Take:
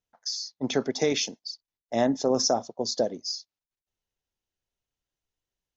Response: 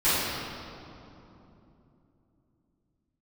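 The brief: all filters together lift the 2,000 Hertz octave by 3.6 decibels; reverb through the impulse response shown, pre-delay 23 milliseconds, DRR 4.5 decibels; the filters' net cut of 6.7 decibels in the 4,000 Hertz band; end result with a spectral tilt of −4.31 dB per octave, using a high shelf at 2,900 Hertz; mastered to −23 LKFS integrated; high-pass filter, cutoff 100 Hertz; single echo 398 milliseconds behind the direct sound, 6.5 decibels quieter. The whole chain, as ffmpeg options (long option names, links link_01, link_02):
-filter_complex "[0:a]highpass=100,equalizer=frequency=2000:width_type=o:gain=8,highshelf=frequency=2900:gain=-7.5,equalizer=frequency=4000:width_type=o:gain=-3.5,aecho=1:1:398:0.473,asplit=2[link_01][link_02];[1:a]atrim=start_sample=2205,adelay=23[link_03];[link_02][link_03]afir=irnorm=-1:irlink=0,volume=-21dB[link_04];[link_01][link_04]amix=inputs=2:normalize=0,volume=4dB"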